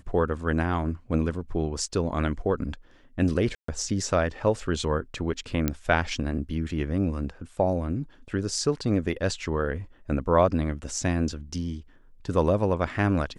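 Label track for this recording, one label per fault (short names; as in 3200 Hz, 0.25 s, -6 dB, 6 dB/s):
3.550000	3.680000	gap 0.134 s
5.680000	5.680000	pop -10 dBFS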